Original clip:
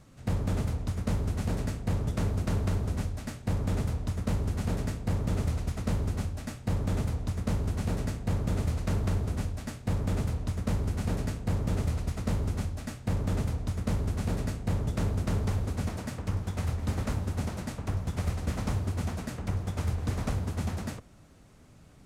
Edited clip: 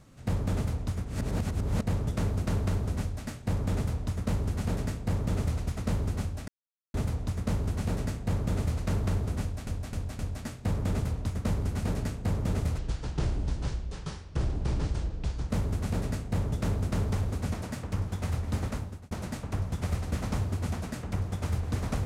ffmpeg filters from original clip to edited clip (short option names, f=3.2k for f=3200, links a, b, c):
-filter_complex "[0:a]asplit=11[a][b][c][d][e][f][g][h][i][j][k];[a]atrim=end=1.052[l];[b]atrim=start=1.048:end=1.832,asetpts=PTS-STARTPTS,areverse[m];[c]atrim=start=1.828:end=6.48,asetpts=PTS-STARTPTS,afade=t=out:st=4.648:d=0.004:c=hsin[n];[d]atrim=start=6.48:end=6.94,asetpts=PTS-STARTPTS,volume=0[o];[e]atrim=start=6.94:end=9.672,asetpts=PTS-STARTPTS,afade=t=in:d=0.004:c=hsin[p];[f]atrim=start=9.408:end=9.672[q];[g]atrim=start=9.408:end=9.672[r];[h]atrim=start=9.408:end=12.004[s];[i]atrim=start=12:end=13.85,asetpts=PTS-STARTPTS,asetrate=29988,aresample=44100[t];[j]atrim=start=13.846:end=17.46,asetpts=PTS-STARTPTS,afade=t=out:st=3.114:d=0.5[u];[k]atrim=start=17.46,asetpts=PTS-STARTPTS,afade=t=in:d=0.004:c=hsin[v];[l][m]acrossfade=d=0.004:c1=hsin:c2=hsin[w];[n][o][p]concat=n=3:v=0:a=1[x];[w][x]acrossfade=d=0.004:c1=hsin:c2=hsin[y];[y][q]acrossfade=d=0.004:c1=hsin:c2=hsin[z];[z][r]acrossfade=d=0.004:c1=hsin:c2=hsin[aa];[aa][s]acrossfade=d=0.004:c1=hsin:c2=hsin[ab];[ab][t]acrossfade=d=0.004:c1=hsin:c2=hsin[ac];[u][v]concat=n=2:v=0:a=1[ad];[ac][ad]acrossfade=d=0.004:c1=hsin:c2=hsin"